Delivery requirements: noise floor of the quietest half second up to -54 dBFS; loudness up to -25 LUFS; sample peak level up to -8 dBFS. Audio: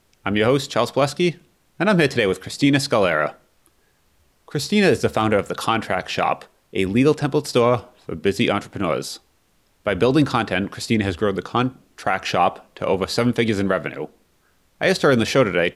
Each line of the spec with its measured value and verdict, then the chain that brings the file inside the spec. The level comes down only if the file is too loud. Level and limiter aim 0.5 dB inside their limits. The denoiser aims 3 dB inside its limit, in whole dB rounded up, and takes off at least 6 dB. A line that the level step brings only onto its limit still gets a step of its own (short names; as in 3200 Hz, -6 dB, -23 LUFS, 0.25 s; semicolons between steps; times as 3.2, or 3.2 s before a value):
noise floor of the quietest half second -62 dBFS: OK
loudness -20.5 LUFS: fail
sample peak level -5.5 dBFS: fail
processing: gain -5 dB